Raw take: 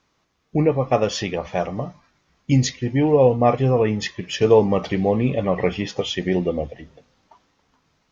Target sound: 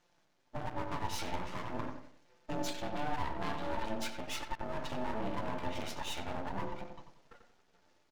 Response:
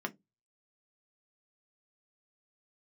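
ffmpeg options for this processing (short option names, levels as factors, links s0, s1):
-filter_complex "[0:a]acompressor=threshold=0.0708:ratio=6,asoftclip=type=tanh:threshold=0.0398,aeval=exprs='val(0)*sin(2*PI*440*n/s)':c=same,flanger=delay=3.9:depth=6.6:regen=83:speed=1.3:shape=sinusoidal,asettb=1/sr,asplit=3[s0][s1][s2];[s0]atrim=end=2.684[s3];[s1]atrim=start=2.68:end=3.9,asetpts=PTS-STARTPTS,afade=t=in:d=0.004:c=qsin,afade=t=out:st=1.216:d=0.004:c=qsin,lowpass=f=4000:t=q:w=2.8[s4];[s2]atrim=start=3.896[s5];[s3][s4]acrossfade=d=0.004:c1=hsin:c2=qsin[s6];[s6][s5]acrossfade=d=0.004:c1=qsin:c2=hsin,flanger=delay=5.7:depth=5.9:regen=-9:speed=0.44:shape=sinusoidal,aeval=exprs='max(val(0),0)':c=same,asplit=2[s7][s8];[s8]adelay=91,lowpass=f=1900:p=1,volume=0.501,asplit=2[s9][s10];[s10]adelay=91,lowpass=f=1900:p=1,volume=0.36,asplit=2[s11][s12];[s12]adelay=91,lowpass=f=1900:p=1,volume=0.36,asplit=2[s13][s14];[s14]adelay=91,lowpass=f=1900:p=1,volume=0.36[s15];[s7][s9][s11][s13][s15]amix=inputs=5:normalize=0,volume=2.51"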